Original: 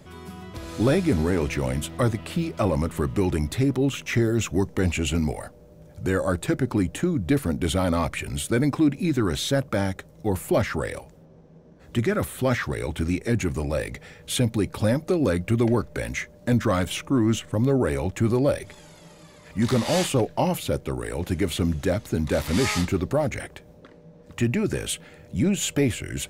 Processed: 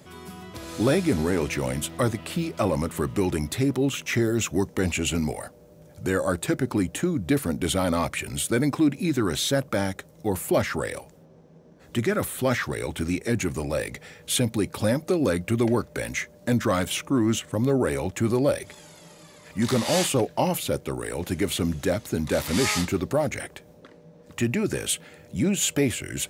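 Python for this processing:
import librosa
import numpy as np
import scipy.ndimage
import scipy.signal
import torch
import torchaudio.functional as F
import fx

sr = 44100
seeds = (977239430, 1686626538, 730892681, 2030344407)

y = fx.highpass(x, sr, hz=130.0, slope=6)
y = fx.high_shelf(y, sr, hz=5200.0, db=5.0)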